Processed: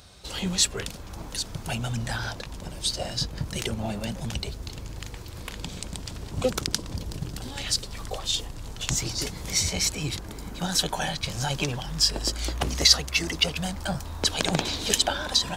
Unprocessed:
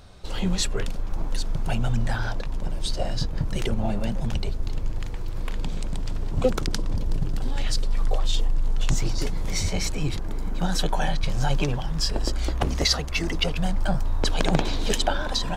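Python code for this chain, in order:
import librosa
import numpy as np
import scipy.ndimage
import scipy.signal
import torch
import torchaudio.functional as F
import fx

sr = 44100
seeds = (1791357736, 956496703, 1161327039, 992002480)

y = scipy.signal.sosfilt(scipy.signal.butter(4, 42.0, 'highpass', fs=sr, output='sos'), x)
y = fx.high_shelf(y, sr, hz=2500.0, db=11.5)
y = F.gain(torch.from_numpy(y), -3.5).numpy()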